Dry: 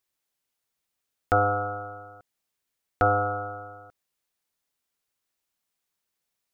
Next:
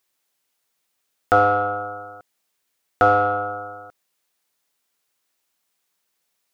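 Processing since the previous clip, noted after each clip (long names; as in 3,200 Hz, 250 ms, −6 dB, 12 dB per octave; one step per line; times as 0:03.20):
low-shelf EQ 130 Hz −12 dB
in parallel at −8 dB: soft clipping −25.5 dBFS, distortion −8 dB
on the sum: level +5.5 dB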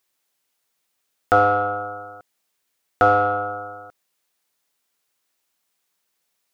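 no processing that can be heard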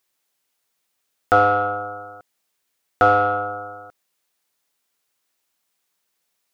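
dynamic equaliser 3,000 Hz, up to +4 dB, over −31 dBFS, Q 0.8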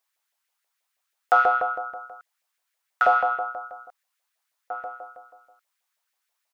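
slap from a distant wall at 290 metres, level −12 dB
auto-filter high-pass saw up 6.2 Hz 570–2,000 Hz
level −6 dB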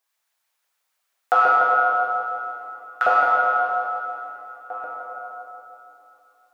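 dense smooth reverb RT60 3.1 s, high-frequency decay 0.8×, DRR −3 dB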